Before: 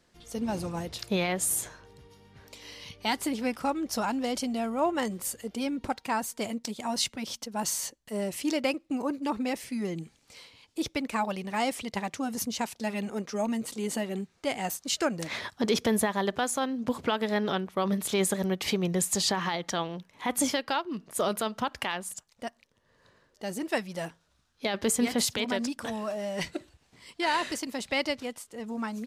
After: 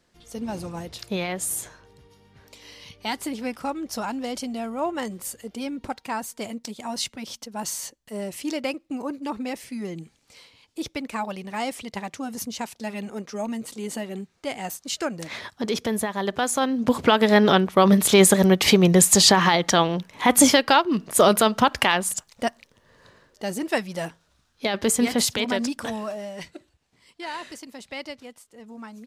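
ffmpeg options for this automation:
-af "volume=12dB,afade=t=in:st=16.12:d=1.3:silence=0.251189,afade=t=out:st=22.45:d=1.14:silence=0.446684,afade=t=out:st=25.83:d=0.62:silence=0.266073"

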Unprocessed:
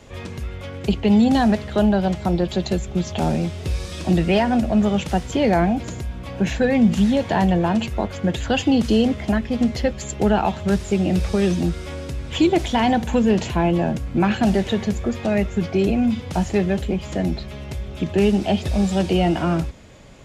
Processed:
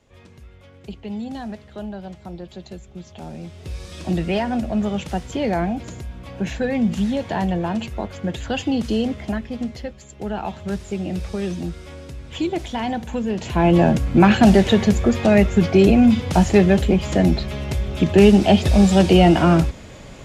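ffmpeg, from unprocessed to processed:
-af "volume=16dB,afade=t=in:st=3.31:d=0.74:silence=0.298538,afade=t=out:st=9.23:d=0.85:silence=0.316228,afade=t=in:st=10.08:d=0.44:silence=0.421697,afade=t=in:st=13.4:d=0.4:silence=0.237137"

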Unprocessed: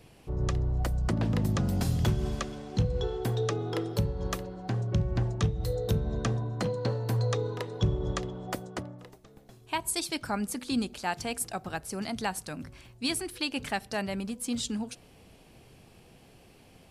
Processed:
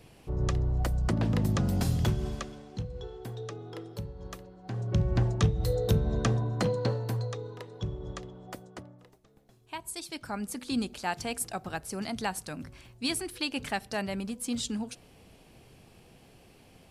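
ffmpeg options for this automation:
-af "volume=20.5dB,afade=t=out:st=1.88:d=0.97:silence=0.298538,afade=t=in:st=4.62:d=0.46:silence=0.237137,afade=t=out:st=6.74:d=0.59:silence=0.298538,afade=t=in:st=10.01:d=0.85:silence=0.421697"

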